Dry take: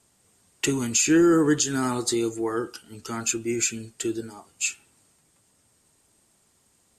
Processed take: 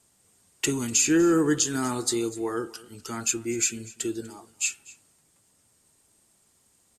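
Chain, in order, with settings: high shelf 6400 Hz +5 dB; echo 0.245 s -21 dB; gain -2.5 dB

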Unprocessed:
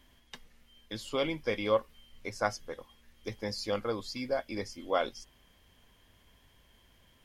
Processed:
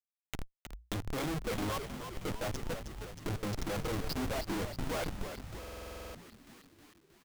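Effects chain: Wiener smoothing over 25 samples; notches 60/120/180/240/300/360/420 Hz; reverb removal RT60 1 s; bell 130 Hz +4 dB 2.6 oct; comb 6.4 ms, depth 78%; in parallel at -1 dB: negative-ratio compressor -36 dBFS, ratio -0.5; on the sum: LFO notch square 0.96 Hz 410–4600 Hz; Schmitt trigger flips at -36 dBFS; on a send: frequency-shifting echo 0.315 s, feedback 60%, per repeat -60 Hz, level -8 dB; on the sum: stuck buffer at 5.59, samples 2048, times 11; mismatched tape noise reduction encoder only

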